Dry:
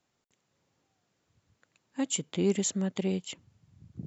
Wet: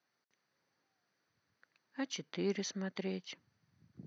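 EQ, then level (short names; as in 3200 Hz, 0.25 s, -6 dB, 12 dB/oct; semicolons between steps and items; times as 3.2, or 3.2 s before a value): Bessel high-pass 180 Hz, order 2; rippled Chebyshev low-pass 6200 Hz, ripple 9 dB; +1.5 dB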